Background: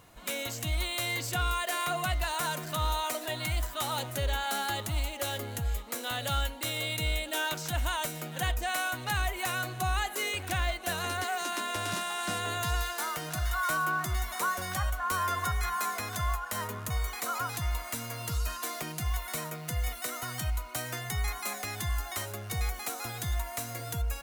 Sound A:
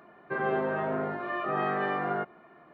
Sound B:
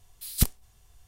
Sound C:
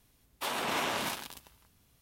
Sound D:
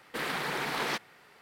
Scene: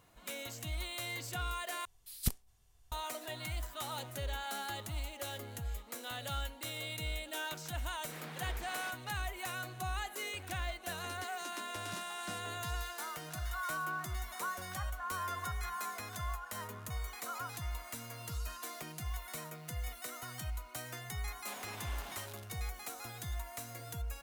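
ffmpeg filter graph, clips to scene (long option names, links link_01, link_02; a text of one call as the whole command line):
ffmpeg -i bed.wav -i cue0.wav -i cue1.wav -i cue2.wav -i cue3.wav -filter_complex "[0:a]volume=-8.5dB[link_01];[3:a]acompressor=threshold=-37dB:ratio=6:attack=3.2:release=140:knee=1:detection=peak[link_02];[link_01]asplit=2[link_03][link_04];[link_03]atrim=end=1.854[link_05];[2:a]atrim=end=1.07,asetpts=PTS-STARTPTS,volume=-10dB[link_06];[link_04]atrim=start=2.916[link_07];[4:a]atrim=end=1.41,asetpts=PTS-STARTPTS,volume=-16.5dB,afade=type=in:duration=0.004:curve=hsin,afade=type=out:start_time=1.406:duration=0.004:curve=hsin,adelay=350154S[link_08];[link_02]atrim=end=2.01,asetpts=PTS-STARTPTS,volume=-8.5dB,afade=type=in:duration=0.004:curve=hsin,afade=type=out:start_time=2.006:duration=0.004:curve=hsin,adelay=21060[link_09];[link_05][link_06]acrossfade=duration=0.004:curve1=hsin:curve2=hsin[link_10];[link_10][link_07]acrossfade=duration=0.004:curve1=hsin:curve2=hsin[link_11];[link_11][link_08][link_09]amix=inputs=3:normalize=0" out.wav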